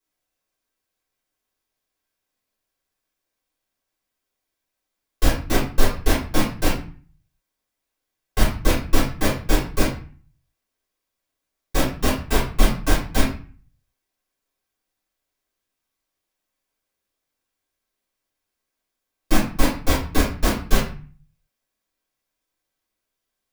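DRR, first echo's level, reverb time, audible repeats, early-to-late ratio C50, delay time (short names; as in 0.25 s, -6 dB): -10.0 dB, none, 0.40 s, none, 4.5 dB, none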